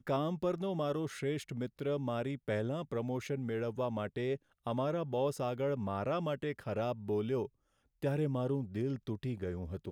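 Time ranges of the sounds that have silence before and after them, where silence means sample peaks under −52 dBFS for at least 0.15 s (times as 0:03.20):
0:04.66–0:07.48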